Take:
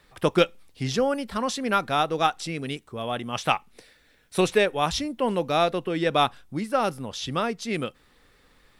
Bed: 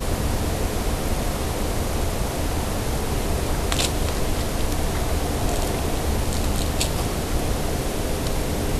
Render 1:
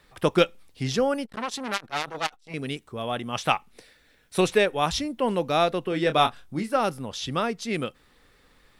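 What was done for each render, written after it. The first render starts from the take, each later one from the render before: 1.25–2.54 core saturation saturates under 4000 Hz; 5.89–6.77 doubler 26 ms -8.5 dB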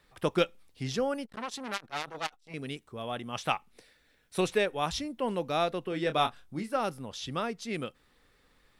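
gain -6.5 dB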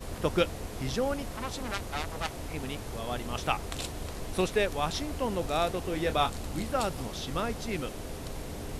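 add bed -14.5 dB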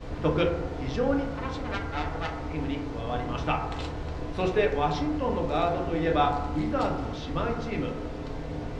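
air absorption 170 m; FDN reverb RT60 0.99 s, low-frequency decay 0.95×, high-frequency decay 0.3×, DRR -0.5 dB

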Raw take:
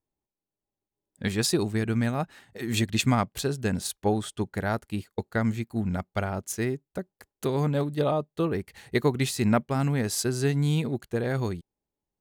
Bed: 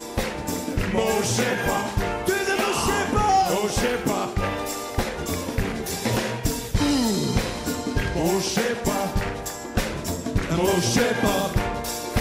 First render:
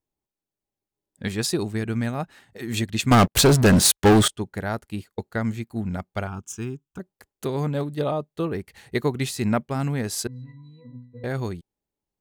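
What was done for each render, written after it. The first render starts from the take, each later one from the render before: 3.11–4.28 sample leveller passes 5; 6.27–7 fixed phaser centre 2900 Hz, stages 8; 10.27–11.24 octave resonator B, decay 0.5 s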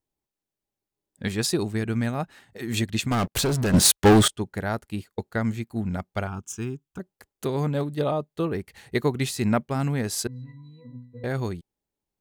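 2.99–3.74 compressor, threshold -22 dBFS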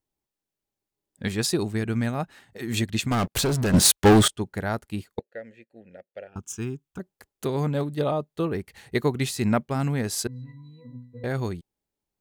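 5.19–6.36 vowel filter e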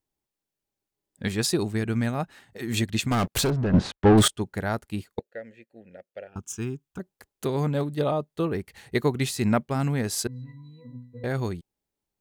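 3.5–4.18 tape spacing loss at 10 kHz 37 dB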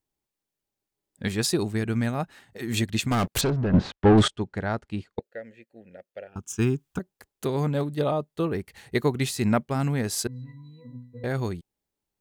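3.41–5.22 air absorption 98 m; 6.59–6.99 gain +8 dB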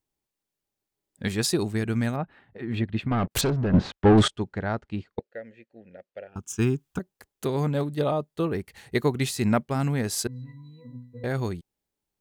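2.16–3.31 air absorption 450 m; 4.54–6.35 air absorption 96 m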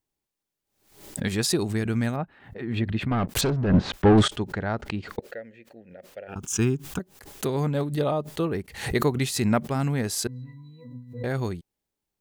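backwards sustainer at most 100 dB/s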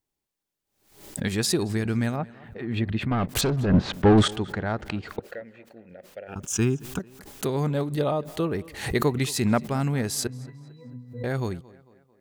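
tape echo 0.223 s, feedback 53%, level -20 dB, low-pass 4000 Hz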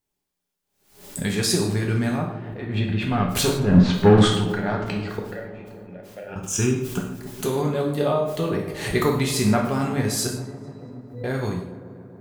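dark delay 0.141 s, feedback 79%, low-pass 860 Hz, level -13.5 dB; non-linear reverb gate 0.2 s falling, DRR -0.5 dB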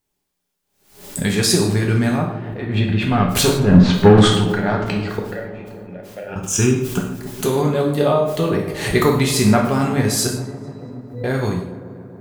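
gain +5.5 dB; limiter -1 dBFS, peak gain reduction 3 dB

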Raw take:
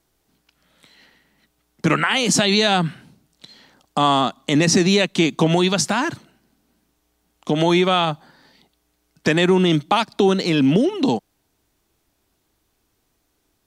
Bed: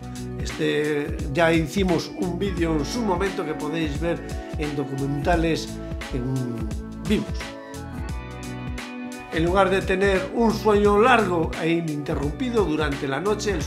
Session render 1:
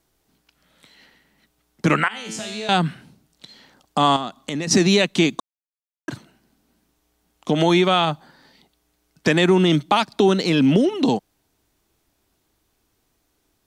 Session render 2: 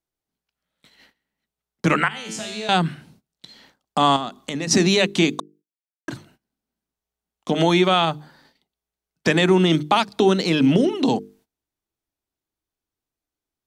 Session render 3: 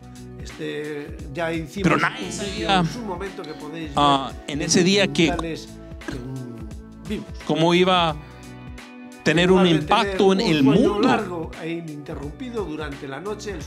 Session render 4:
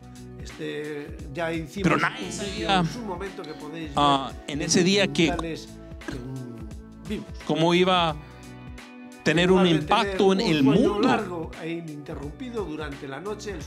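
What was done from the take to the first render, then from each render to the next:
2.08–2.69 resonator 110 Hz, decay 1 s, mix 90%; 4.16–4.71 compressor 2.5:1, threshold -27 dBFS; 5.4–6.08 mute
notches 50/100/150/200/250/300/350/400/450 Hz; gate -52 dBFS, range -20 dB
add bed -6.5 dB
gain -3 dB

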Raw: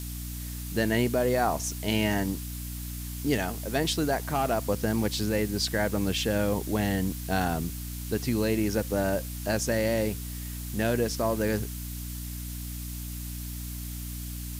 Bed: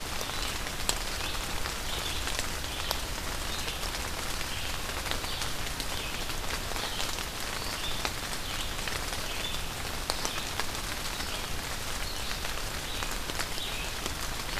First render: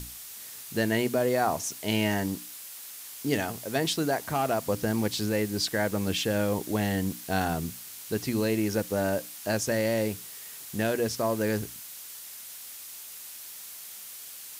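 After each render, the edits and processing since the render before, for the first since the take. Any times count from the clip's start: notches 60/120/180/240/300 Hz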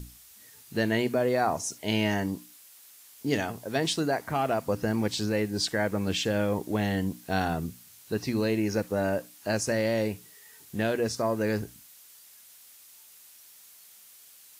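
noise print and reduce 10 dB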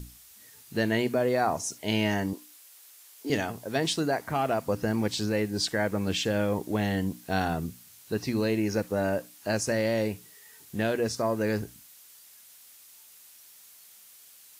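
2.33–3.3 HPF 300 Hz 24 dB/oct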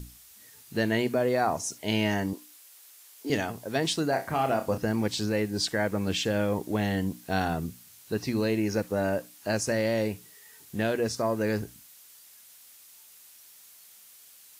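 4.09–4.78 flutter echo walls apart 5.3 m, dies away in 0.24 s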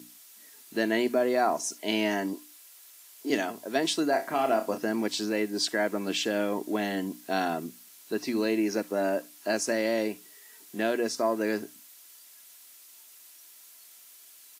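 HPF 200 Hz 24 dB/oct; comb 3 ms, depth 36%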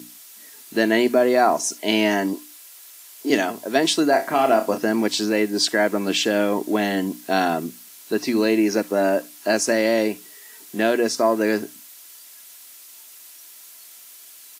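gain +8 dB

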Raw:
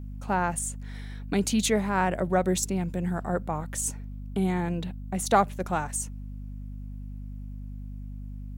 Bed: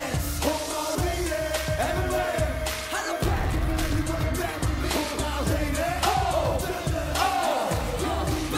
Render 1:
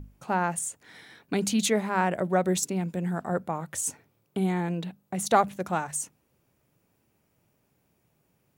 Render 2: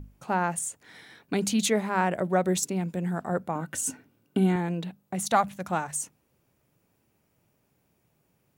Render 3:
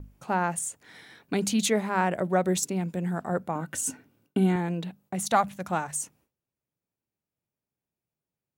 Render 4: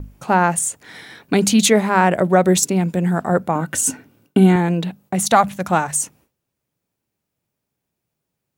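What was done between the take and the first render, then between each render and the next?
notches 50/100/150/200/250 Hz
3.55–4.56 small resonant body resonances 260/1500/2800 Hz, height 13 dB; 5.2–5.71 bell 400 Hz -9.5 dB 0.78 oct
gate with hold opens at -58 dBFS
gain +11 dB; limiter -2 dBFS, peak gain reduction 3 dB

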